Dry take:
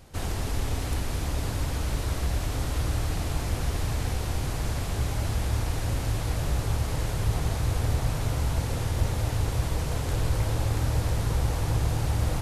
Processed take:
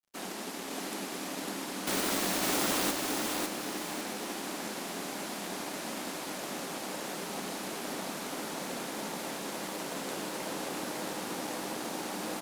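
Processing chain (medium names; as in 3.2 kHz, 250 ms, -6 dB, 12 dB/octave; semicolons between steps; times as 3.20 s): Chebyshev high-pass 190 Hz, order 5; band-stop 470 Hz, Q 15; crossover distortion -49 dBFS; 1.87–2.91 s: companded quantiser 2-bit; on a send: feedback delay 553 ms, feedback 31%, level -3.5 dB; on the sum: trim -1 dB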